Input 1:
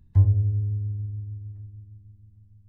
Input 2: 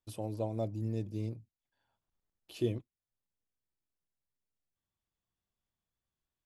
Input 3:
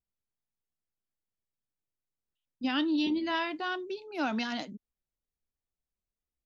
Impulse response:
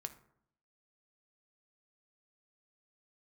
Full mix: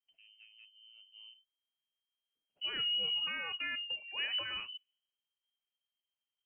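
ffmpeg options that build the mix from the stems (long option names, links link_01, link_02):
-filter_complex "[1:a]agate=range=-20dB:threshold=-48dB:ratio=16:detection=peak,asoftclip=type=tanh:threshold=-25dB,volume=-17.5dB,afade=type=in:start_time=0.96:duration=0.24:silence=0.473151[link_01];[2:a]alimiter=level_in=2.5dB:limit=-24dB:level=0:latency=1,volume=-2.5dB,bandreject=frequency=2500:width=18,volume=-2.5dB,asplit=2[link_02][link_03];[link_03]volume=-23dB[link_04];[3:a]atrim=start_sample=2205[link_05];[link_04][link_05]afir=irnorm=-1:irlink=0[link_06];[link_01][link_02][link_06]amix=inputs=3:normalize=0,lowpass=frequency=2700:width_type=q:width=0.5098,lowpass=frequency=2700:width_type=q:width=0.6013,lowpass=frequency=2700:width_type=q:width=0.9,lowpass=frequency=2700:width_type=q:width=2.563,afreqshift=-3200"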